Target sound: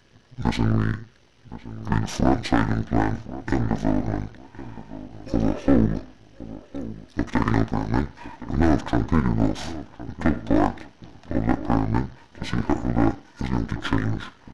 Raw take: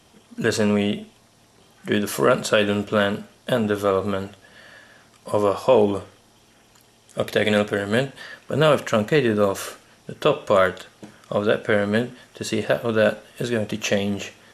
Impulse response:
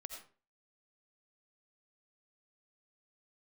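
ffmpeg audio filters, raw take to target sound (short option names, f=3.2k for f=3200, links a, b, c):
-filter_complex "[0:a]aeval=exprs='if(lt(val(0),0),0.251*val(0),val(0))':c=same,asetrate=23361,aresample=44100,atempo=1.88775,asplit=2[a][b];[b]adelay=1065,lowpass=f=1.5k:p=1,volume=-15dB,asplit=2[c][d];[d]adelay=1065,lowpass=f=1.5k:p=1,volume=0.25,asplit=2[e][f];[f]adelay=1065,lowpass=f=1.5k:p=1,volume=0.25[g];[a][c][e][g]amix=inputs=4:normalize=0,volume=1dB"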